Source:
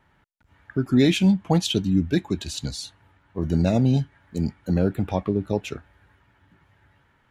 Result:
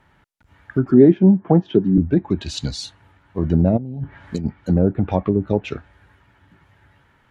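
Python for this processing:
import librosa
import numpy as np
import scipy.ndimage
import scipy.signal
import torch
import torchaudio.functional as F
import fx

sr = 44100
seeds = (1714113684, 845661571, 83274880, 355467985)

y = fx.env_lowpass_down(x, sr, base_hz=810.0, full_db=-17.5)
y = fx.cabinet(y, sr, low_hz=130.0, low_slope=24, high_hz=5500.0, hz=(380.0, 1700.0, 2600.0, 4200.0), db=(9, 5, -8, -9), at=(0.91, 1.98))
y = fx.over_compress(y, sr, threshold_db=-31.0, ratio=-1.0, at=(3.76, 4.44), fade=0.02)
y = y * 10.0 ** (5.0 / 20.0)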